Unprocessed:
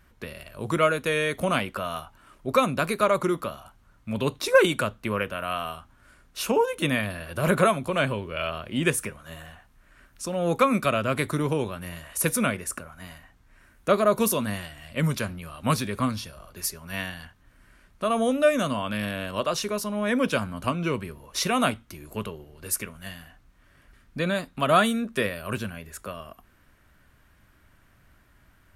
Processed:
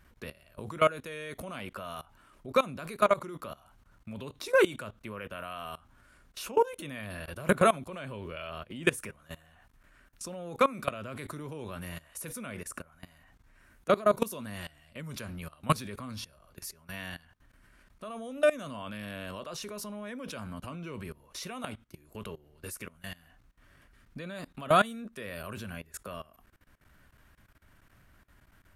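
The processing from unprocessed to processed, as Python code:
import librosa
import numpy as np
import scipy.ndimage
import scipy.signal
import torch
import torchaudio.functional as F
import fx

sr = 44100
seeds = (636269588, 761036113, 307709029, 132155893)

y = fx.level_steps(x, sr, step_db=20)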